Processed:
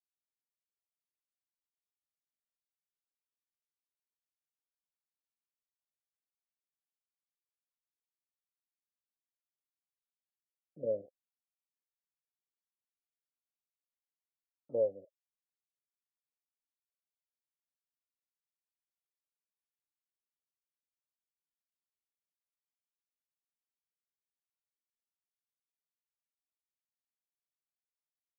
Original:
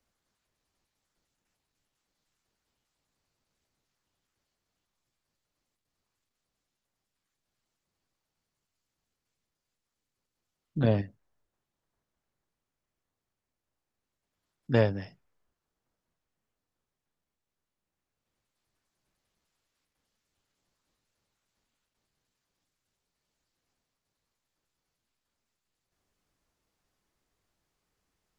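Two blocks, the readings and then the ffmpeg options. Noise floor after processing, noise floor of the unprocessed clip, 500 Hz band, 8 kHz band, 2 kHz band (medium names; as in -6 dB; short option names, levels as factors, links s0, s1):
under -85 dBFS, under -85 dBFS, -4.0 dB, no reading, under -40 dB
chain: -filter_complex "[0:a]afftfilt=real='re*gte(hypot(re,im),0.00891)':imag='im*gte(hypot(re,im),0.00891)':win_size=1024:overlap=0.75,highshelf=f=3000:g=-9,acrossover=split=540[s0][s1];[s0]acrusher=bits=6:mix=0:aa=0.000001[s2];[s2][s1]amix=inputs=2:normalize=0,asplit=3[s3][s4][s5];[s3]bandpass=f=530:t=q:w=8,volume=1[s6];[s4]bandpass=f=1840:t=q:w=8,volume=0.501[s7];[s5]bandpass=f=2480:t=q:w=8,volume=0.355[s8];[s6][s7][s8]amix=inputs=3:normalize=0,afftfilt=real='re*lt(b*sr/1024,670*pow(2000/670,0.5+0.5*sin(2*PI*0.71*pts/sr)))':imag='im*lt(b*sr/1024,670*pow(2000/670,0.5+0.5*sin(2*PI*0.71*pts/sr)))':win_size=1024:overlap=0.75"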